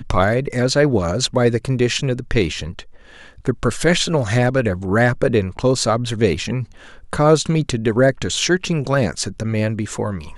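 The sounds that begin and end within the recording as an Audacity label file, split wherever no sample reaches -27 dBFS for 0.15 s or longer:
3.450000	6.640000	sound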